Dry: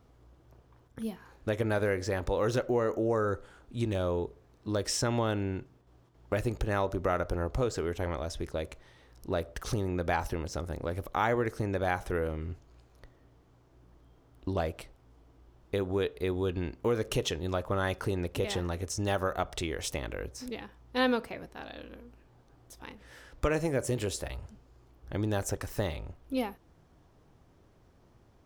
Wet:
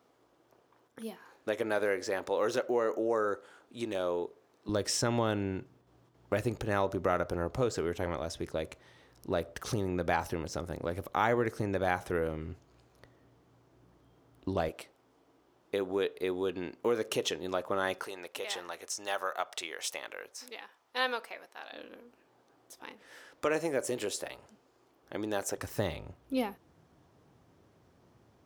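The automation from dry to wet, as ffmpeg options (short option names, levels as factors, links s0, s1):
-af "asetnsamples=n=441:p=0,asendcmd='4.69 highpass f 110;14.69 highpass f 260;18.03 highpass f 720;21.72 highpass f 300;25.58 highpass f 100',highpass=320"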